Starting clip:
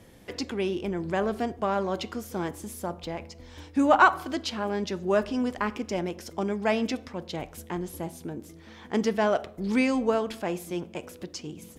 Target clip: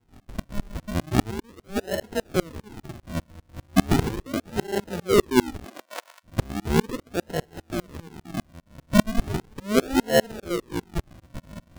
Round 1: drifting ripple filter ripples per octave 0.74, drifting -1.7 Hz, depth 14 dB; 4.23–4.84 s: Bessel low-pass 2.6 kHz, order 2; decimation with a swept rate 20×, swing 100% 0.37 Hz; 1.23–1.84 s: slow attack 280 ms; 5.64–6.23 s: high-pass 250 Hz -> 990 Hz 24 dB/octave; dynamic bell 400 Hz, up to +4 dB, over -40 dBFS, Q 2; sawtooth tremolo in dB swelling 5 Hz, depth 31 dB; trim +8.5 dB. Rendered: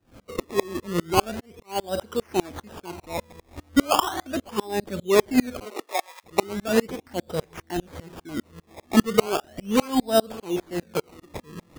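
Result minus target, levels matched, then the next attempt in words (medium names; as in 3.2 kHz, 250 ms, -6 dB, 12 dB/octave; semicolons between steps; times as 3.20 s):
decimation with a swept rate: distortion -18 dB
drifting ripple filter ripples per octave 0.74, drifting -1.7 Hz, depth 14 dB; 4.23–4.84 s: Bessel low-pass 2.6 kHz, order 2; decimation with a swept rate 73×, swing 100% 0.37 Hz; 1.23–1.84 s: slow attack 280 ms; 5.64–6.23 s: high-pass 250 Hz -> 990 Hz 24 dB/octave; dynamic bell 400 Hz, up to +4 dB, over -40 dBFS, Q 2; sawtooth tremolo in dB swelling 5 Hz, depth 31 dB; trim +8.5 dB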